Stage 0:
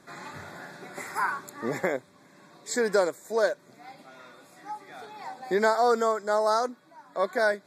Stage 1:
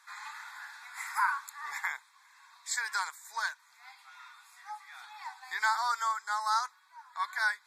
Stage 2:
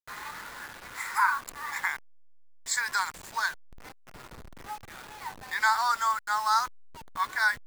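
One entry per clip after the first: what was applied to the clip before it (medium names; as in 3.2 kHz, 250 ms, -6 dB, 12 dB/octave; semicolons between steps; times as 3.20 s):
elliptic high-pass 910 Hz, stop band 40 dB
send-on-delta sampling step -43.5 dBFS; trim +4.5 dB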